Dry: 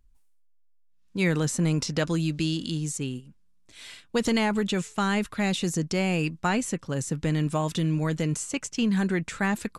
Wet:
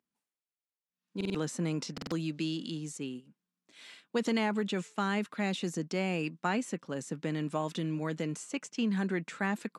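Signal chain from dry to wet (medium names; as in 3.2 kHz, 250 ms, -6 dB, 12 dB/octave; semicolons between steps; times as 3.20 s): high-pass 180 Hz 24 dB/octave; treble shelf 6.1 kHz -10 dB; buffer glitch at 1.16/1.93 s, samples 2048, times 3; trim -5 dB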